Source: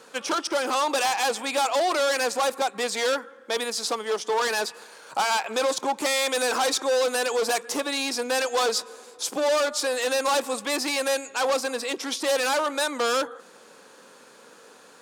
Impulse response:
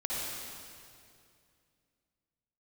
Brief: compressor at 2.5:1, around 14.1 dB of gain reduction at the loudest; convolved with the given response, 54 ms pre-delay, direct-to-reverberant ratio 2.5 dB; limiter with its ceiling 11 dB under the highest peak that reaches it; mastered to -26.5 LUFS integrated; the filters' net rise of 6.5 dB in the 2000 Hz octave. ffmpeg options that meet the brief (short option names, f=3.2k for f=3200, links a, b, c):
-filter_complex "[0:a]equalizer=f=2k:t=o:g=8.5,acompressor=threshold=-40dB:ratio=2.5,alimiter=level_in=6.5dB:limit=-24dB:level=0:latency=1,volume=-6.5dB,asplit=2[a][b];[1:a]atrim=start_sample=2205,adelay=54[c];[b][c]afir=irnorm=-1:irlink=0,volume=-8.5dB[d];[a][d]amix=inputs=2:normalize=0,volume=11.5dB"